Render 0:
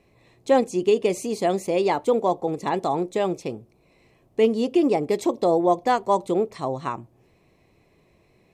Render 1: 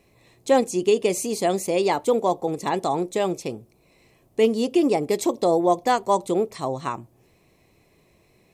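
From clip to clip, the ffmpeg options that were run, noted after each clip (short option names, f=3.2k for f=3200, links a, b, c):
-af "highshelf=f=5.5k:g=11"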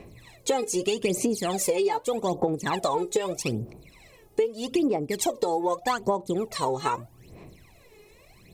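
-af "aphaser=in_gain=1:out_gain=1:delay=2.4:decay=0.78:speed=0.81:type=sinusoidal,alimiter=limit=-2.5dB:level=0:latency=1:release=282,acompressor=threshold=-24dB:ratio=12,volume=2.5dB"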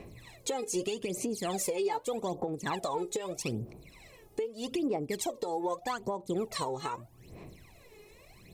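-af "alimiter=limit=-21dB:level=0:latency=1:release=485,volume=-1.5dB"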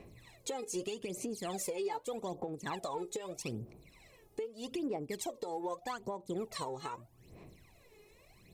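-af "aeval=exprs='0.0794*(cos(1*acos(clip(val(0)/0.0794,-1,1)))-cos(1*PI/2))+0.000794*(cos(7*acos(clip(val(0)/0.0794,-1,1)))-cos(7*PI/2))':c=same,volume=-5.5dB"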